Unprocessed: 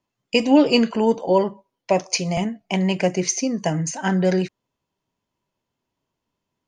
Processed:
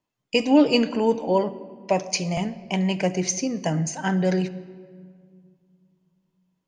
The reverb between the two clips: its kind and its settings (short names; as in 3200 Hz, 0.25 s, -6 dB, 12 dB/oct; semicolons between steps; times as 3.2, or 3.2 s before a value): shoebox room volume 3800 m³, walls mixed, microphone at 0.5 m; gain -3 dB